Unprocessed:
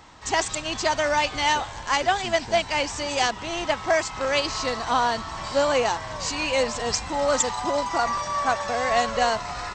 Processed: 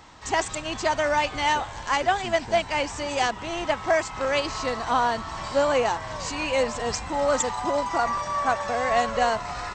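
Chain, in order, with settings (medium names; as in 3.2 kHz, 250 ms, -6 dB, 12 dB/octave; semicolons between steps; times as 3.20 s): dynamic bell 4.9 kHz, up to -6 dB, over -40 dBFS, Q 0.84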